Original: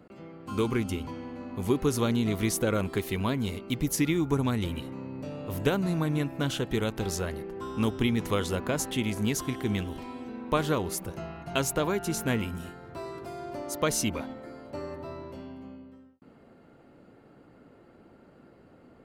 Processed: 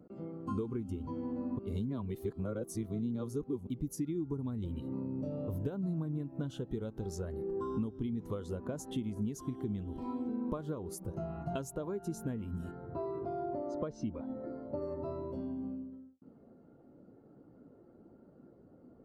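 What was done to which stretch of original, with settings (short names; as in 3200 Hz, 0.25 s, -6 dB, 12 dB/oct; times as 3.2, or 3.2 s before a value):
1.59–3.67 reverse
12.71–14.82 air absorption 180 m
whole clip: bell 2300 Hz -7 dB 1.1 oct; compressor 16:1, threshold -38 dBFS; spectral expander 1.5:1; gain +3.5 dB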